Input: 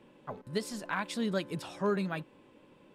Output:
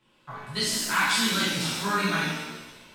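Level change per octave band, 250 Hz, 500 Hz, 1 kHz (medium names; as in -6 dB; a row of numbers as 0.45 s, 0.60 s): +4.0 dB, -1.0 dB, +10.0 dB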